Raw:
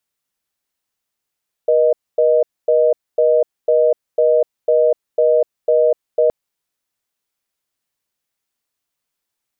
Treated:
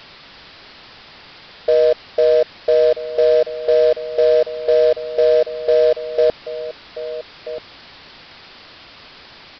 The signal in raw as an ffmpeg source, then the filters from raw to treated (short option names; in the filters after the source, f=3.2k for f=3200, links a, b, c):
-f lavfi -i "aevalsrc='0.224*(sin(2*PI*480*t)+sin(2*PI*620*t))*clip(min(mod(t,0.5),0.25-mod(t,0.5))/0.005,0,1)':d=4.62:s=44100"
-filter_complex "[0:a]aeval=exprs='val(0)+0.5*0.0316*sgn(val(0))':c=same,aresample=11025,acrusher=bits=5:mode=log:mix=0:aa=0.000001,aresample=44100,asplit=2[a][b];[b]adelay=1283,volume=-13dB,highshelf=f=4k:g=-28.9[c];[a][c]amix=inputs=2:normalize=0"